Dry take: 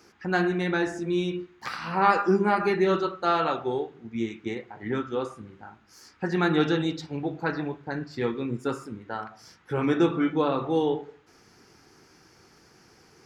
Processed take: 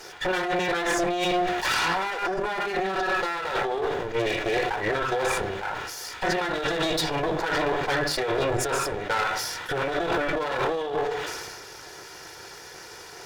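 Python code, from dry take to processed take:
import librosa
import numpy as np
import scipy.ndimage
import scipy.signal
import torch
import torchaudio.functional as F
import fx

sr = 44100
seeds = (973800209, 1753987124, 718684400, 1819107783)

y = fx.lower_of_two(x, sr, delay_ms=2.1)
y = fx.low_shelf(y, sr, hz=320.0, db=-10.5)
y = fx.over_compress(y, sr, threshold_db=-38.0, ratio=-1.0)
y = fx.small_body(y, sr, hz=(730.0, 1700.0, 3500.0), ring_ms=100, db=13)
y = fx.fold_sine(y, sr, drive_db=9, ceiling_db=-17.0)
y = fx.sustainer(y, sr, db_per_s=29.0)
y = y * librosa.db_to_amplitude(-2.0)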